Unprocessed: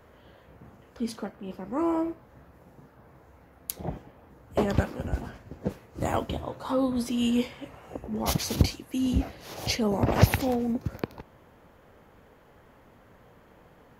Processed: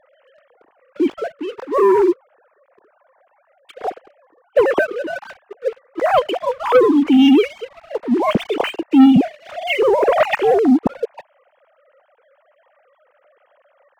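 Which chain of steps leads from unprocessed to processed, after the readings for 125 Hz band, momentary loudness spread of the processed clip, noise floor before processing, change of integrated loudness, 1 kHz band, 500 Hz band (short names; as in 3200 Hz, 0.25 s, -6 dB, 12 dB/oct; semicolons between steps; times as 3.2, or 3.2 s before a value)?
-5.0 dB, 17 LU, -57 dBFS, +12.5 dB, +13.5 dB, +16.0 dB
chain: sine-wave speech; sample leveller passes 2; gain +6.5 dB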